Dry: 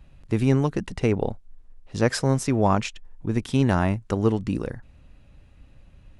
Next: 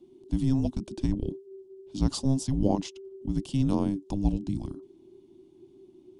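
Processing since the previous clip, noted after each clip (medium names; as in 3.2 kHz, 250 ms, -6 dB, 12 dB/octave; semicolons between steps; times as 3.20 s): frequency shift -400 Hz; high-order bell 1.7 kHz -16 dB 1.2 oct; trim -4.5 dB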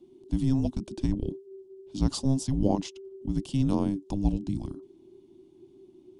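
no audible change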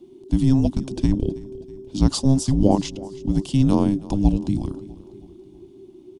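feedback delay 323 ms, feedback 51%, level -19.5 dB; trim +8 dB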